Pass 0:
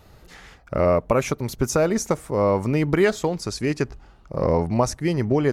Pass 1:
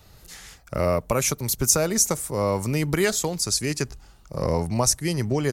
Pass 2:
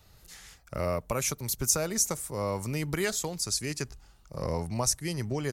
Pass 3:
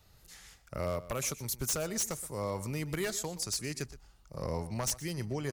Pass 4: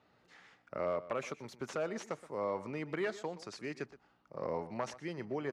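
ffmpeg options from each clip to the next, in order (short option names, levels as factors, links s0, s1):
-filter_complex "[0:a]firequalizer=gain_entry='entry(130,0);entry(270,-4);entry(4200,5)':delay=0.05:min_phase=1,acrossover=split=190|6800[s0][s1][s2];[s2]dynaudnorm=f=150:g=3:m=3.98[s3];[s0][s1][s3]amix=inputs=3:normalize=0,volume=0.891"
-af "equalizer=f=330:w=0.46:g=-2.5,volume=0.501"
-filter_complex "[0:a]aeval=exprs='0.0891*(abs(mod(val(0)/0.0891+3,4)-2)-1)':c=same,asplit=2[s0][s1];[s1]adelay=122.4,volume=0.158,highshelf=f=4000:g=-2.76[s2];[s0][s2]amix=inputs=2:normalize=0,volume=0.631"
-af "aeval=exprs='val(0)+0.000562*(sin(2*PI*60*n/s)+sin(2*PI*2*60*n/s)/2+sin(2*PI*3*60*n/s)/3+sin(2*PI*4*60*n/s)/4+sin(2*PI*5*60*n/s)/5)':c=same,highpass=270,lowpass=2100,volume=1.12"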